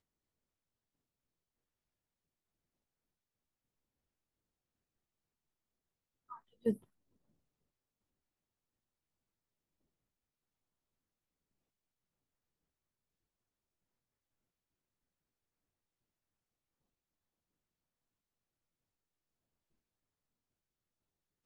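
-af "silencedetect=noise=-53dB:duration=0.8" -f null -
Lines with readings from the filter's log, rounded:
silence_start: 0.00
silence_end: 6.30 | silence_duration: 6.30
silence_start: 6.77
silence_end: 21.46 | silence_duration: 14.69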